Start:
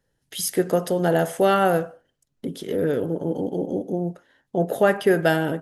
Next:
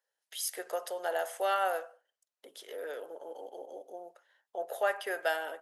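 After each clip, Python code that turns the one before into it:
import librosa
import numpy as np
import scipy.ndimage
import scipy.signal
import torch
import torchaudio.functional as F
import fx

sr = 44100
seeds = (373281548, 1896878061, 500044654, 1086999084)

y = scipy.signal.sosfilt(scipy.signal.butter(4, 580.0, 'highpass', fs=sr, output='sos'), x)
y = y * 10.0 ** (-8.5 / 20.0)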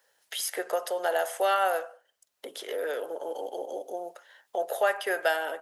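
y = fx.band_squash(x, sr, depth_pct=40)
y = y * 10.0 ** (6.0 / 20.0)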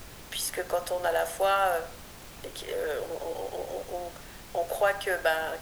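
y = fx.dmg_noise_colour(x, sr, seeds[0], colour='pink', level_db=-46.0)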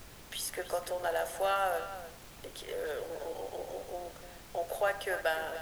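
y = x + 10.0 ** (-13.0 / 20.0) * np.pad(x, (int(297 * sr / 1000.0), 0))[:len(x)]
y = y * 10.0 ** (-5.5 / 20.0)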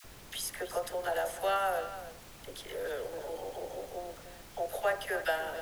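y = fx.dispersion(x, sr, late='lows', ms=46.0, hz=790.0)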